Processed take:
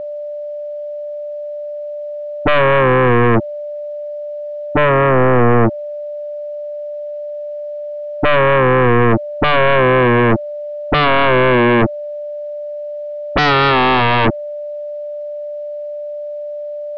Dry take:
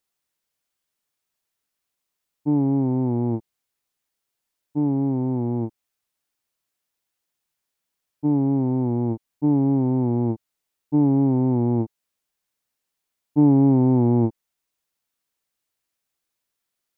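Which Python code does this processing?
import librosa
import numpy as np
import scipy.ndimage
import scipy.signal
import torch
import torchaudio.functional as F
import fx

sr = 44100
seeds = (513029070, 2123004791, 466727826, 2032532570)

y = x + 10.0 ** (-46.0 / 20.0) * np.sin(2.0 * np.pi * 590.0 * np.arange(len(x)) / sr)
y = fx.fold_sine(y, sr, drive_db=20, ceiling_db=-7.5)
y = fx.air_absorb(y, sr, metres=210.0)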